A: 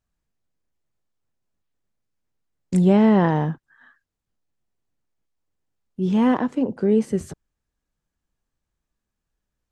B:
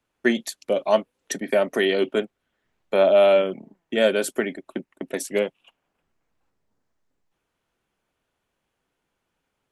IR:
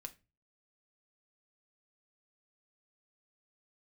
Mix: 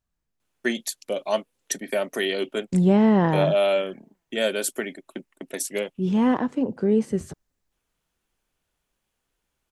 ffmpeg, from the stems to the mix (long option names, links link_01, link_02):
-filter_complex "[0:a]volume=-2dB[link_01];[1:a]highshelf=frequency=3600:gain=11,adelay=400,volume=-5.5dB[link_02];[link_01][link_02]amix=inputs=2:normalize=0"